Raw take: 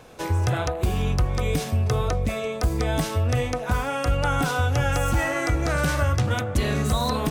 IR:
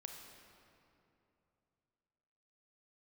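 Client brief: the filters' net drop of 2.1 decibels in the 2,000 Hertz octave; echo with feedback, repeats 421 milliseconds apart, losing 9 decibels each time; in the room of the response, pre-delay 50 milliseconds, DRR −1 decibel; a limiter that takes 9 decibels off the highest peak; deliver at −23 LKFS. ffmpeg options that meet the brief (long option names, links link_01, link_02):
-filter_complex "[0:a]equalizer=frequency=2000:width_type=o:gain=-3,alimiter=limit=-22dB:level=0:latency=1,aecho=1:1:421|842|1263|1684:0.355|0.124|0.0435|0.0152,asplit=2[link_01][link_02];[1:a]atrim=start_sample=2205,adelay=50[link_03];[link_02][link_03]afir=irnorm=-1:irlink=0,volume=5dB[link_04];[link_01][link_04]amix=inputs=2:normalize=0,volume=3.5dB"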